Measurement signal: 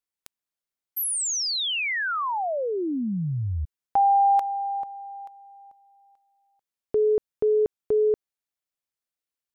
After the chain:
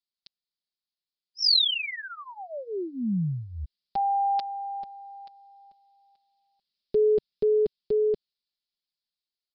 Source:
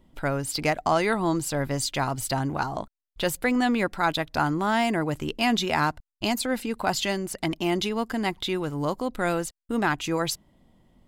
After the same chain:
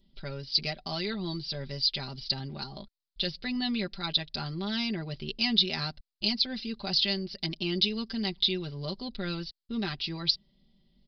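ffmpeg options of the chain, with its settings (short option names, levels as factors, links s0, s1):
-af "aresample=11025,aresample=44100,firequalizer=gain_entry='entry(140,0);entry(950,-13);entry(4000,13)':delay=0.05:min_phase=1,dynaudnorm=f=780:g=7:m=3.35,aecho=1:1:5.1:0.79,volume=0.355"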